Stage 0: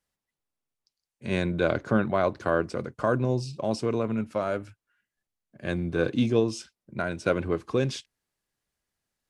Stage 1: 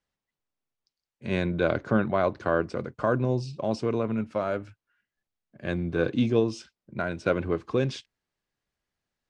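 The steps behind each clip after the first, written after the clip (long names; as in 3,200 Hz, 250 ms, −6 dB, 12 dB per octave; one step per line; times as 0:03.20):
Bessel low-pass filter 4,800 Hz, order 2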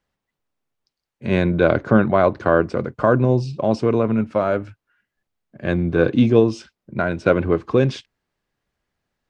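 high-shelf EQ 3,100 Hz −7.5 dB
level +9 dB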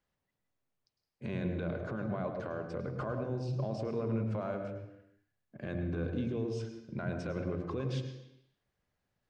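downward compressor, threshold −24 dBFS, peak gain reduction 15 dB
brickwall limiter −21 dBFS, peak gain reduction 12 dB
on a send at −5 dB: convolution reverb RT60 0.85 s, pre-delay 100 ms
on the sum: level −7 dB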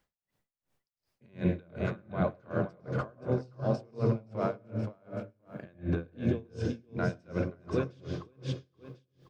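repeating echo 523 ms, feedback 22%, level −5 dB
tremolo with a sine in dB 2.7 Hz, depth 32 dB
level +8.5 dB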